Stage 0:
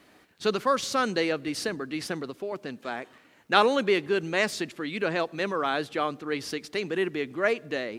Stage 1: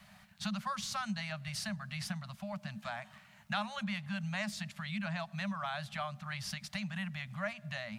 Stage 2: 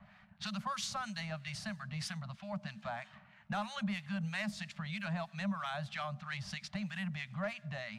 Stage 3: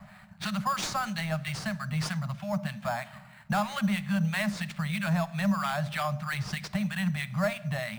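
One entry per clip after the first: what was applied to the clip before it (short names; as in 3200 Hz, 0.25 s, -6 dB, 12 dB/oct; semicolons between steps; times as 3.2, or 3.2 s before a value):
Chebyshev band-stop 210–590 Hz, order 5; resonant low shelf 350 Hz +6.5 dB, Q 3; compressor 2.5:1, threshold -39 dBFS, peak gain reduction 14.5 dB
soft clip -28.5 dBFS, distortion -20 dB; low-pass opened by the level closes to 1900 Hz, open at -34.5 dBFS; harmonic tremolo 3.1 Hz, depth 70%, crossover 1200 Hz; gain +3.5 dB
in parallel at -4.5 dB: sample-rate reducer 6000 Hz, jitter 0%; on the sum: shoebox room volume 1900 m³, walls furnished, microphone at 0.52 m; gain +5.5 dB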